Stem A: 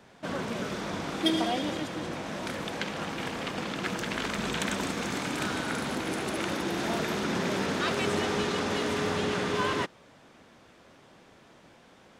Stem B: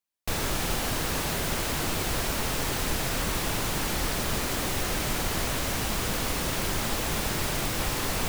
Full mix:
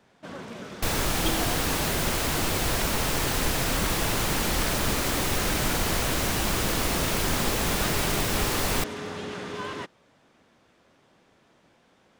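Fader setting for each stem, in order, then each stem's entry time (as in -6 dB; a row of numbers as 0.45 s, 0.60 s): -6.0 dB, +2.5 dB; 0.00 s, 0.55 s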